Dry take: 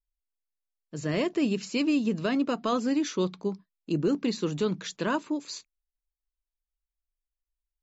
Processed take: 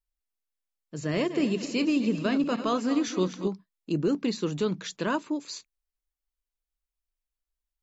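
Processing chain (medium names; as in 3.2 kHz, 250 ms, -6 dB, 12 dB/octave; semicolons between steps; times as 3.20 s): 1.03–3.48 s: backward echo that repeats 128 ms, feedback 65%, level -11 dB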